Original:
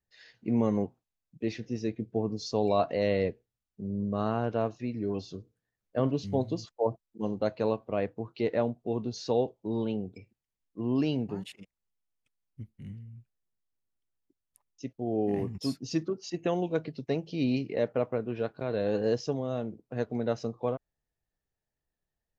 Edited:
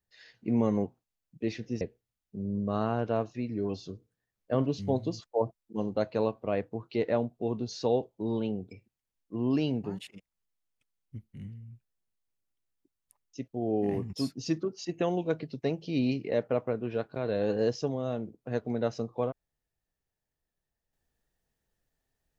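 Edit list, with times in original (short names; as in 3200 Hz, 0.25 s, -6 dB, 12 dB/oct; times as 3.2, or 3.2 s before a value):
1.81–3.26 cut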